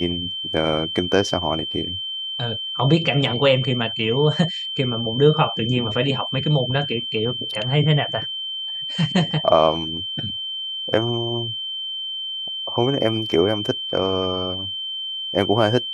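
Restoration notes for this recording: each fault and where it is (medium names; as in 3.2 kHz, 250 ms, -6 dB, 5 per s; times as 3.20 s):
whine 3.1 kHz -26 dBFS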